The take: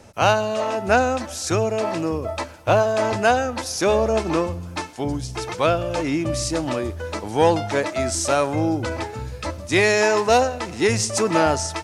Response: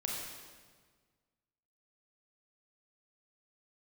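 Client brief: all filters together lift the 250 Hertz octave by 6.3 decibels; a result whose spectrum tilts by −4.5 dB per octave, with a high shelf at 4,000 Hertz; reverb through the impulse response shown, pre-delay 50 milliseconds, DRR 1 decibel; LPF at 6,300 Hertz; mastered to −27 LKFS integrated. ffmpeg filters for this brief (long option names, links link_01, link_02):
-filter_complex "[0:a]lowpass=6300,equalizer=frequency=250:width_type=o:gain=8.5,highshelf=frequency=4000:gain=8.5,asplit=2[link_01][link_02];[1:a]atrim=start_sample=2205,adelay=50[link_03];[link_02][link_03]afir=irnorm=-1:irlink=0,volume=-3.5dB[link_04];[link_01][link_04]amix=inputs=2:normalize=0,volume=-11dB"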